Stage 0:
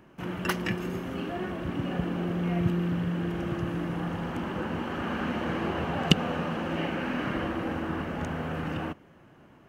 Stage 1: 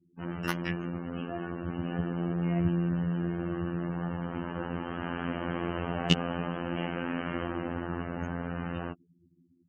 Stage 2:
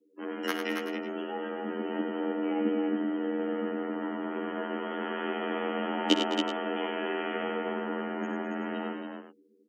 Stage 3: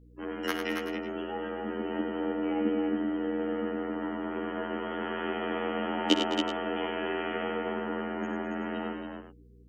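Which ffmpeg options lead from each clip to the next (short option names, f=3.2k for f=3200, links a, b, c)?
-af "afftfilt=real='re*gte(hypot(re,im),0.0112)':imag='im*gte(hypot(re,im),0.0112)':win_size=1024:overlap=0.75,afftfilt=real='hypot(re,im)*cos(PI*b)':imag='0':win_size=2048:overlap=0.75"
-filter_complex "[0:a]afreqshift=130,asplit=2[a][b];[b]aecho=0:1:62|97|211|277|379:0.237|0.473|0.224|0.501|0.211[c];[a][c]amix=inputs=2:normalize=0"
-af "aeval=exprs='val(0)+0.002*(sin(2*PI*60*n/s)+sin(2*PI*2*60*n/s)/2+sin(2*PI*3*60*n/s)/3+sin(2*PI*4*60*n/s)/4+sin(2*PI*5*60*n/s)/5)':c=same"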